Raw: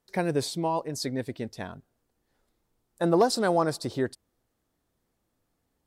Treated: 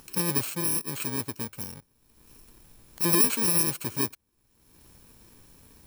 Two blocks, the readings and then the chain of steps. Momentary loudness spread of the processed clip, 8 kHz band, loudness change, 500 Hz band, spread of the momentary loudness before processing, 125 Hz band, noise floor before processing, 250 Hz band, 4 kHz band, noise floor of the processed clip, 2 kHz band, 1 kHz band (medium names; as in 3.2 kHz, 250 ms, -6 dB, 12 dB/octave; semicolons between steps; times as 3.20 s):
14 LU, +12.0 dB, +3.0 dB, -9.5 dB, 14 LU, -0.5 dB, -78 dBFS, -3.0 dB, +1.5 dB, -69 dBFS, +0.5 dB, -8.0 dB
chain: bit-reversed sample order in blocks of 64 samples; upward compressor, threshold -35 dBFS